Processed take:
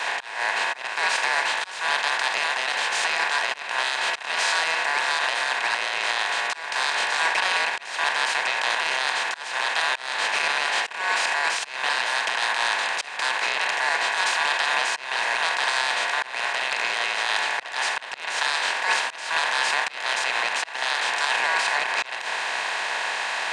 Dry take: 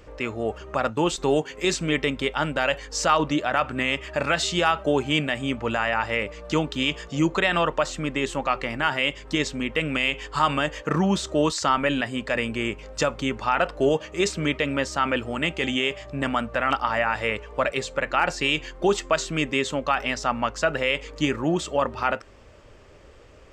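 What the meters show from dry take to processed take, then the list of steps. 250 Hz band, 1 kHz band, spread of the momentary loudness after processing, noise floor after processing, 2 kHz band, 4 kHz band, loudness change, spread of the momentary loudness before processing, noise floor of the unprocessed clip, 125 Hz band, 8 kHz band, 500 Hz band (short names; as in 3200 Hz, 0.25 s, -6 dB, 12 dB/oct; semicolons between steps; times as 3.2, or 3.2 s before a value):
-24.0 dB, +1.0 dB, 4 LU, -37 dBFS, +5.5 dB, +4.5 dB, +1.5 dB, 5 LU, -49 dBFS, under -25 dB, +3.5 dB, -9.5 dB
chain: per-bin compression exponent 0.2; ring modulator 1300 Hz; HPF 730 Hz 12 dB/oct; auto swell 0.238 s; limiter -7.5 dBFS, peak gain reduction 7 dB; three-band expander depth 70%; gain -4.5 dB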